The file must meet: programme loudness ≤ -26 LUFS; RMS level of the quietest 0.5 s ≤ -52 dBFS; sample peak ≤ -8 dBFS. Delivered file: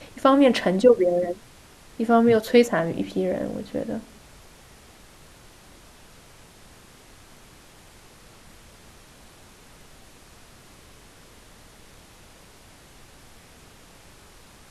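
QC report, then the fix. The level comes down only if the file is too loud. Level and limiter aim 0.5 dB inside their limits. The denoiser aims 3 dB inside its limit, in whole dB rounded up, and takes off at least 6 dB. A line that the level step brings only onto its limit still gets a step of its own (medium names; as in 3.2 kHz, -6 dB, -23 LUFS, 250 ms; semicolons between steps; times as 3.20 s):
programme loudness -21.0 LUFS: fail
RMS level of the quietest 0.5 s -50 dBFS: fail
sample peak -3.5 dBFS: fail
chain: trim -5.5 dB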